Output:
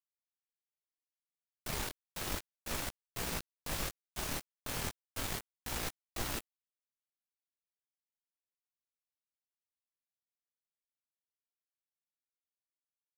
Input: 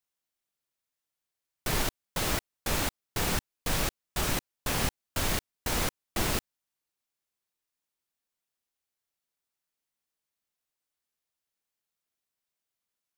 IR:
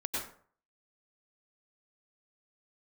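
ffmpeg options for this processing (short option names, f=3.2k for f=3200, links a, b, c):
-af "flanger=delay=17:depth=7.4:speed=0.33,aeval=exprs='val(0)*gte(abs(val(0)),0.0299)':c=same,volume=-5dB"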